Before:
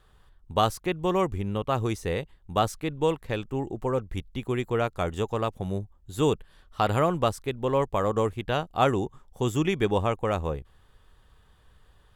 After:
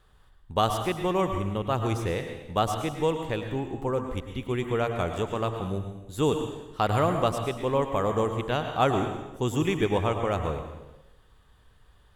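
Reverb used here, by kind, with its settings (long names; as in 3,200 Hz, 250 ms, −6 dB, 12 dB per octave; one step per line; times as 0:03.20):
dense smooth reverb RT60 1 s, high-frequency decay 0.95×, pre-delay 90 ms, DRR 5.5 dB
level −1 dB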